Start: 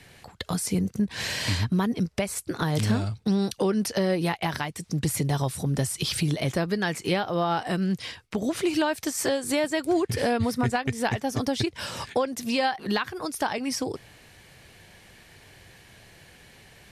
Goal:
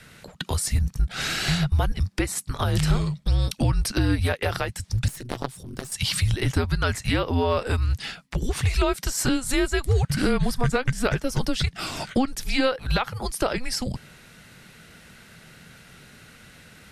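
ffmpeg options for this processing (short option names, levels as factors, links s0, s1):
-filter_complex "[0:a]afreqshift=-260,asettb=1/sr,asplit=3[s0][s1][s2];[s0]atrim=end=5.084[s3];[s1]atrim=start=5.08:end=5.92,asetpts=PTS-STARTPTS,afade=t=in:d=0.004:c=qsin,afade=t=out:st=0.836:d=0.004:c=qsin,aeval=exprs='0.211*(cos(1*acos(clip(val(0)/0.211,-1,1)))-cos(1*PI/2))+0.106*(cos(3*acos(clip(val(0)/0.211,-1,1)))-cos(3*PI/2))+0.00668*(cos(4*acos(clip(val(0)/0.211,-1,1)))-cos(4*PI/2))+0.00841*(cos(5*acos(clip(val(0)/0.211,-1,1)))-cos(5*PI/2))':c=same[s4];[s2]atrim=start=5.916[s5];[s3][s4]acrossfade=d=0.004:c1=hsin:c2=qsin[s6];[s6][s5]acrossfade=d=0.004:c1=qsin:c2=hsin,volume=1.41"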